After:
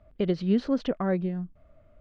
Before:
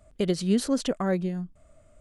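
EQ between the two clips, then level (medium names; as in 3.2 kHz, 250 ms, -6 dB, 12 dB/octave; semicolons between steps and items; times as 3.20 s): low-pass 6.4 kHz 12 dB/octave; distance through air 260 m; 0.0 dB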